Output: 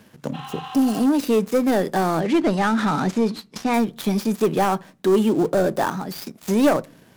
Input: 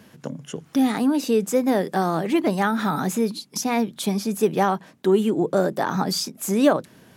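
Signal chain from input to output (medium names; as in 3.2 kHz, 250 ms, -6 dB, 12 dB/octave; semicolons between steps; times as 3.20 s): dead-time distortion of 0.058 ms; 0.36–1.01 s: spectral replace 740–4200 Hz after; 2.20–3.74 s: low-pass 6.5 kHz 12 dB/octave; waveshaping leveller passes 1; 5.89–6.48 s: compression 4:1, threshold -27 dBFS, peak gain reduction 10.5 dB; saturation -10.5 dBFS, distortion -19 dB; on a send: reverberation RT60 0.35 s, pre-delay 3 ms, DRR 21.5 dB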